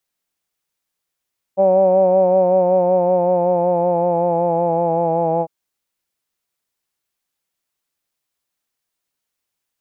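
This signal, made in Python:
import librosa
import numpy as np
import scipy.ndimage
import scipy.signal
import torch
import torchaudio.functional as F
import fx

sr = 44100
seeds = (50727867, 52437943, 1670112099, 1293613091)

y = fx.vowel(sr, seeds[0], length_s=3.9, word='hawed', hz=190.0, glide_st=-2.5, vibrato_hz=5.3, vibrato_st=0.4)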